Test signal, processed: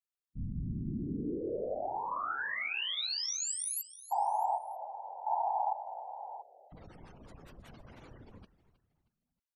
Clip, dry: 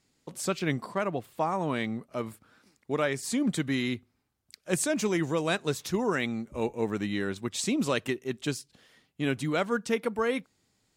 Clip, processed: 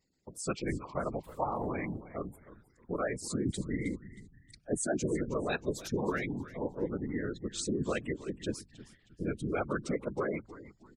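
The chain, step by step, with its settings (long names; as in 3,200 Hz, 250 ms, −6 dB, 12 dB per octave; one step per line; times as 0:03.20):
gate on every frequency bin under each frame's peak −15 dB strong
random phases in short frames
on a send: echo with shifted repeats 315 ms, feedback 36%, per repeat −87 Hz, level −16 dB
on the sum: level −4.5 dB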